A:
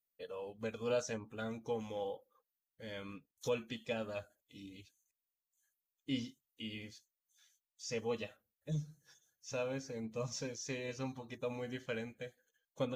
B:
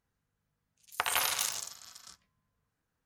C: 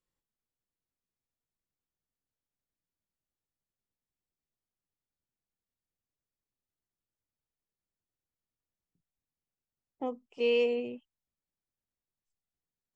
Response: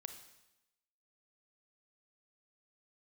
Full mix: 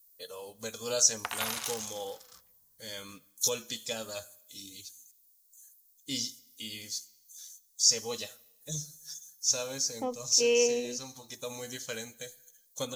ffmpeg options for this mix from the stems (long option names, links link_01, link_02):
-filter_complex "[0:a]lowshelf=frequency=460:gain=-8.5,aexciter=amount=10.1:drive=4.9:freq=4000,volume=2dB,asplit=2[link_01][link_02];[link_02]volume=-7.5dB[link_03];[1:a]adelay=250,volume=-4.5dB[link_04];[2:a]equalizer=frequency=72:width=0.71:gain=-15,volume=2dB,asplit=2[link_05][link_06];[link_06]apad=whole_len=571474[link_07];[link_01][link_07]sidechaincompress=threshold=-35dB:ratio=8:attack=7.8:release=842[link_08];[3:a]atrim=start_sample=2205[link_09];[link_03][link_09]afir=irnorm=-1:irlink=0[link_10];[link_08][link_04][link_05][link_10]amix=inputs=4:normalize=0,lowshelf=frequency=63:gain=6.5"